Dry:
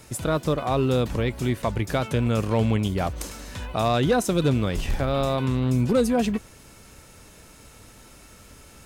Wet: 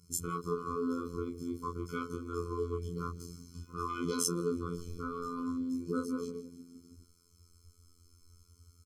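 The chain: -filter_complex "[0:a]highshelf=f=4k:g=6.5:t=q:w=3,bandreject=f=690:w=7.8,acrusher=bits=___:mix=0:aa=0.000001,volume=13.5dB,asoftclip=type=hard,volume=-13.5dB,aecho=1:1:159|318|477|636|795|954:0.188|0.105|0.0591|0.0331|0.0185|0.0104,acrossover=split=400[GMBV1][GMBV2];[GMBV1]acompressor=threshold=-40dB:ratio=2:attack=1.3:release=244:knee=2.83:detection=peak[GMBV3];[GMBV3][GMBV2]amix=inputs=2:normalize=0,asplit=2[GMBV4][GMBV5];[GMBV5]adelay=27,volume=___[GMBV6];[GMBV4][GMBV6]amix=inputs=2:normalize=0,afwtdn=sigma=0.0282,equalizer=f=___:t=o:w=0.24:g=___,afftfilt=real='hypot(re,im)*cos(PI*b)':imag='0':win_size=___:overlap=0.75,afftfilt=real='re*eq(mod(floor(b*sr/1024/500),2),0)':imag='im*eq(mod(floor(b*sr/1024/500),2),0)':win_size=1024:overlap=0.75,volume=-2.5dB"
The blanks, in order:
10, -3.5dB, 2.1k, -12.5, 2048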